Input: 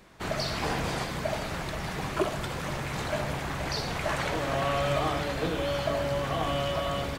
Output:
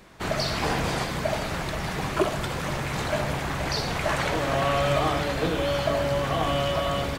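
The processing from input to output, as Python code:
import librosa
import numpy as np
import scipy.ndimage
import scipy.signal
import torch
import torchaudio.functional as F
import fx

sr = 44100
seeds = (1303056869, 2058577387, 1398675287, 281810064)

y = x * 10.0 ** (4.0 / 20.0)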